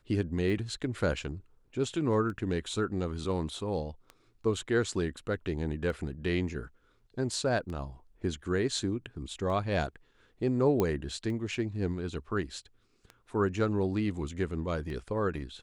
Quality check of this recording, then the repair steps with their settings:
tick 33 1/3 rpm
10.80 s: pop -15 dBFS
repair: de-click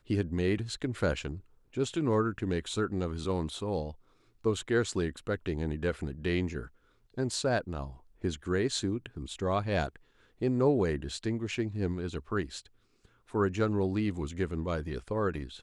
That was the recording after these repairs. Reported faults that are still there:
nothing left

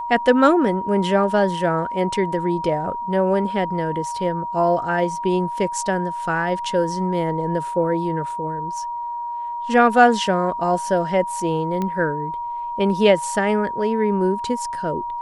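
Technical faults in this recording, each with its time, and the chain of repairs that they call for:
whine 950 Hz -25 dBFS
11.82 s: pop -13 dBFS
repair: de-click; band-stop 950 Hz, Q 30

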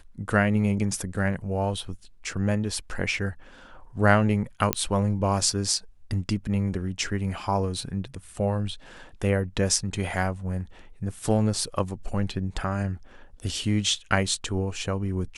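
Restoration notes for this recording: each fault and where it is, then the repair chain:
4.73 s: pop -3 dBFS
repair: de-click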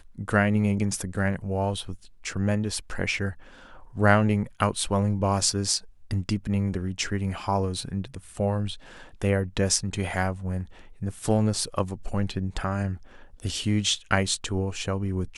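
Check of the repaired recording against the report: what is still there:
nothing left

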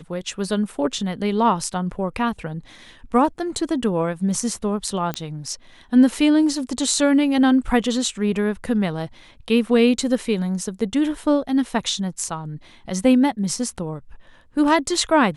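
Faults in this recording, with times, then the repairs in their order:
5.14 s: pop -11 dBFS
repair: de-click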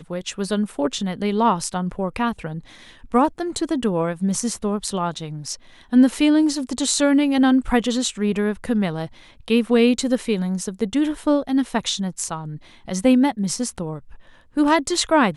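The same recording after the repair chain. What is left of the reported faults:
nothing left

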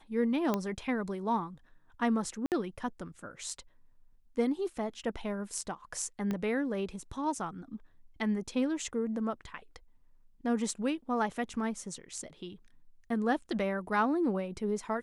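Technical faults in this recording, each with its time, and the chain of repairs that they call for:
0.54 s: pop -16 dBFS
2.46–2.52 s: dropout 58 ms
6.31 s: pop -21 dBFS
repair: de-click; interpolate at 2.46 s, 58 ms

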